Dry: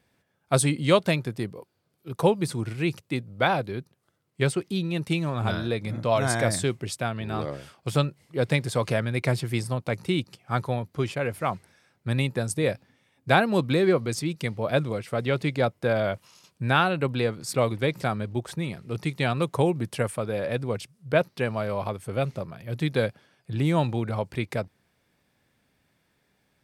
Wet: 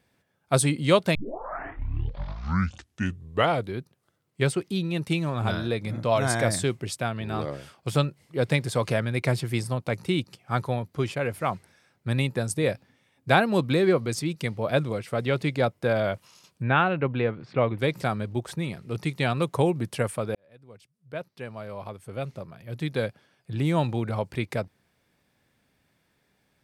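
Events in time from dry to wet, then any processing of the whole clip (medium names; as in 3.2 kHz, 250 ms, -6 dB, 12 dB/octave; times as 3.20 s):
1.15 s: tape start 2.63 s
16.62–17.78 s: low-pass 2.9 kHz 24 dB/octave
20.35–24.09 s: fade in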